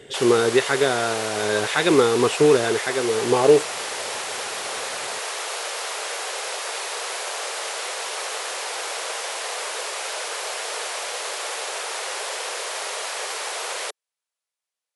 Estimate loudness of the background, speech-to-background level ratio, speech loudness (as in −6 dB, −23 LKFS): −28.0 LKFS, 8.0 dB, −20.0 LKFS